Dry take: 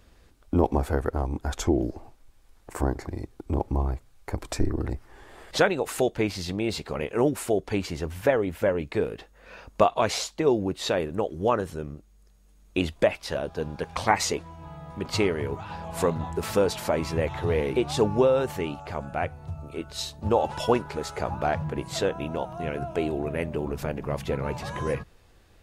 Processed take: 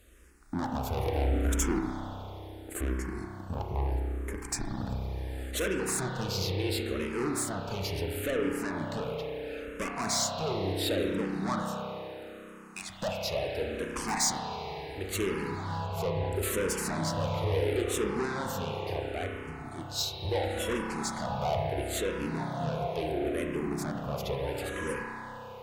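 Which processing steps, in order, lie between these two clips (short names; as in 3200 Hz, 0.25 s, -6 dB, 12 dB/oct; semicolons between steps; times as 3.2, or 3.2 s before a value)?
11.61–12.9 HPF 800 Hz 24 dB/oct; 15.86–16.32 high shelf 2800 Hz -10 dB; tube stage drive 26 dB, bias 0.3; spring tank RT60 3.7 s, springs 31 ms, chirp 55 ms, DRR -0.5 dB; 0.97–1.79 sample leveller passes 1; high shelf 6000 Hz +11.5 dB; endless phaser -0.73 Hz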